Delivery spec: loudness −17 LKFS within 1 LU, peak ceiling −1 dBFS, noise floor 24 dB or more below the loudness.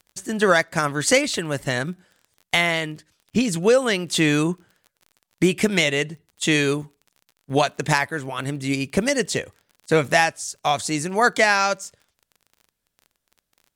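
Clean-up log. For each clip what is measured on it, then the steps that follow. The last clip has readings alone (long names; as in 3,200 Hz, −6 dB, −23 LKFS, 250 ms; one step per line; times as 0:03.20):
crackle rate 29 per second; integrated loudness −21.5 LKFS; sample peak −5.0 dBFS; target loudness −17.0 LKFS
→ click removal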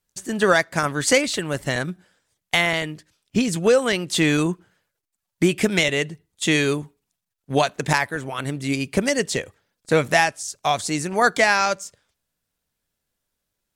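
crackle rate 0.073 per second; integrated loudness −21.5 LKFS; sample peak −4.0 dBFS; target loudness −17.0 LKFS
→ level +4.5 dB
brickwall limiter −1 dBFS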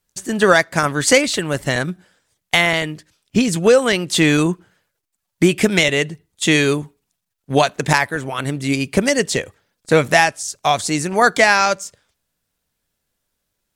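integrated loudness −17.0 LKFS; sample peak −1.0 dBFS; background noise floor −77 dBFS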